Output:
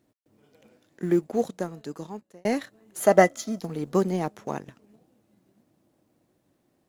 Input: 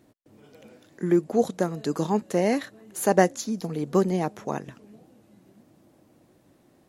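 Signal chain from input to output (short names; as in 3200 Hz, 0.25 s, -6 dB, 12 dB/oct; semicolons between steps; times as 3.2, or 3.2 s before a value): G.711 law mismatch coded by A; 1.14–2.45 fade out; 3–3.61 small resonant body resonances 650/1300/2000/3200 Hz, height 13 dB; gain -1 dB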